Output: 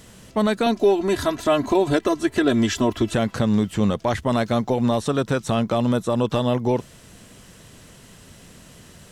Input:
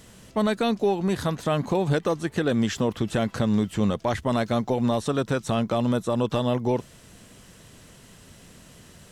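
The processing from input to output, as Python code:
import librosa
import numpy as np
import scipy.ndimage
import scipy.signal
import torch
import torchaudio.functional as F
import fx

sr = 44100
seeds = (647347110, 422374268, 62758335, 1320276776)

y = fx.comb(x, sr, ms=3.0, depth=0.89, at=(0.66, 3.14))
y = y * 10.0 ** (3.0 / 20.0)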